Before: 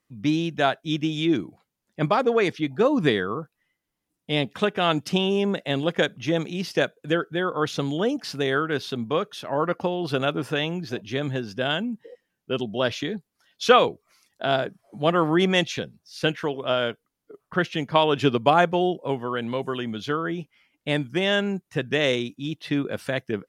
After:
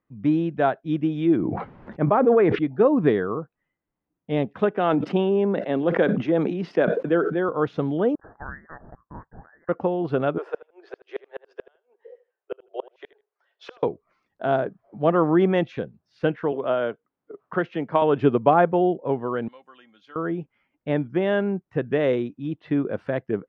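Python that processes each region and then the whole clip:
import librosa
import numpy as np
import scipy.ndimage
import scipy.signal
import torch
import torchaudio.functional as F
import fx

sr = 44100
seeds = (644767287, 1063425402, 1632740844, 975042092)

y = fx.chain(x, sr, fx.lowpass(hz=2500.0, slope=12),
    fx.sustainer(db_per_s=22.0), at=(1.36, 2.59))
y = fx.chain(y, sr, fx.highpass(hz=170.0, slope=24),
    fx.sustainer(db_per_s=41.0), at=(4.71, 7.49))
y = fx.chain(y, sr, fx.steep_highpass(hz=1700.0, slope=96),
    fx.freq_invert(carrier_hz=3400), at=(8.15, 9.69))
y = fx.chain(y, sr, fx.steep_highpass(hz=380.0, slope=72),
    fx.gate_flip(shuts_db=-18.0, range_db=-38),
    fx.echo_feedback(ms=79, feedback_pct=16, wet_db=-17), at=(10.38, 13.83))
y = fx.chain(y, sr, fx.highpass(hz=240.0, slope=6),
    fx.band_squash(depth_pct=40), at=(16.52, 18.02))
y = fx.chain(y, sr, fx.differentiator(),
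    fx.comb(ms=3.7, depth=0.46), at=(19.48, 20.16))
y = scipy.signal.sosfilt(scipy.signal.butter(2, 1400.0, 'lowpass', fs=sr, output='sos'), y)
y = fx.dynamic_eq(y, sr, hz=410.0, q=0.82, threshold_db=-31.0, ratio=4.0, max_db=3)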